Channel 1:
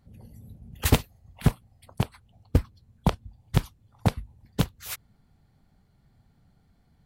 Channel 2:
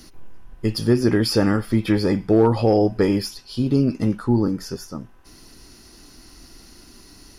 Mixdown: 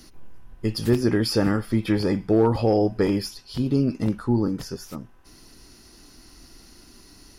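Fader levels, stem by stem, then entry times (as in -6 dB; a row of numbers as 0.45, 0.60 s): -15.0, -3.0 dB; 0.00, 0.00 s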